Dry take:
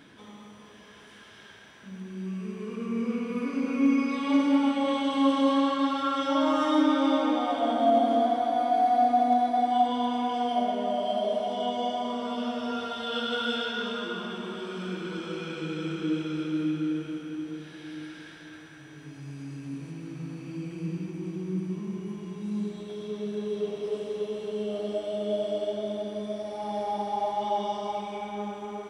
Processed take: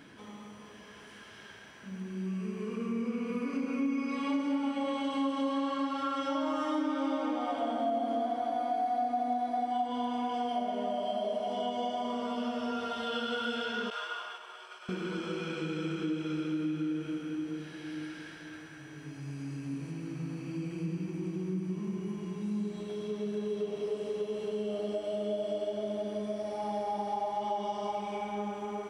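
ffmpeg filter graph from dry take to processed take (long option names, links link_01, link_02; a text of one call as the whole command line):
ffmpeg -i in.wav -filter_complex "[0:a]asettb=1/sr,asplit=3[link_01][link_02][link_03];[link_01]atrim=end=13.904[link_04];[link_02]atrim=start=13.9:end=14.89,asetpts=PTS-STARTPTS,afade=type=in:duration=0.004:curve=qsin,afade=type=out:start_time=0.986:duration=0.004:curve=qsin,highpass=frequency=670:width=0.5412,highpass=frequency=670:width=1.3066,agate=range=-33dB:threshold=-38dB:ratio=3:release=100:detection=peak[link_05];[link_03]atrim=start=14.886[link_06];[link_04][link_05]acrossfade=duration=0.004:curve1=hsin:curve2=qsin[link_07];[link_07][link_06]acrossfade=duration=0.004:curve1=qsin:curve2=hsin,bandreject=frequency=3600:width=8.8,acompressor=threshold=-31dB:ratio=3" out.wav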